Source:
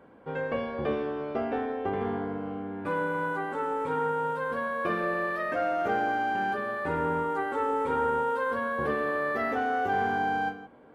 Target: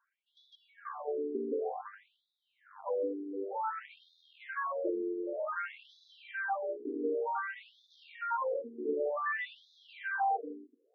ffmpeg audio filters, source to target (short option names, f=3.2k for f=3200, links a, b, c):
-filter_complex "[0:a]afwtdn=0.0141,asettb=1/sr,asplit=3[a][b][c];[a]atrim=end=3.934[d];[b]atrim=start=3.93:end=4.65,asetpts=PTS-STARTPTS,afade=t=in:d=0.004:c=qsin,afade=t=out:st=0.716:d=0.004:c=qsin,lowshelf=f=480:g=-9.5[e];[c]atrim=start=4.646[f];[d][e]acrossfade=d=0.004:c1=hsin:c2=qsin[g];[g][f]acrossfade=d=0.004:c1=qsin:c2=hsin,asplit=2[h][i];[i]asoftclip=type=tanh:threshold=-28dB,volume=-7dB[j];[h][j]amix=inputs=2:normalize=0,afftfilt=real='re*between(b*sr/1024,310*pow(4800/310,0.5+0.5*sin(2*PI*0.54*pts/sr))/1.41,310*pow(4800/310,0.5+0.5*sin(2*PI*0.54*pts/sr))*1.41)':imag='im*between(b*sr/1024,310*pow(4800/310,0.5+0.5*sin(2*PI*0.54*pts/sr))/1.41,310*pow(4800/310,0.5+0.5*sin(2*PI*0.54*pts/sr))*1.41)':win_size=1024:overlap=0.75,volume=-2dB"